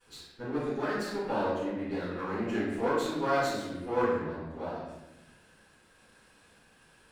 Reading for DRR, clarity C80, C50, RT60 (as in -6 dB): -18.5 dB, 2.0 dB, -1.5 dB, 1.0 s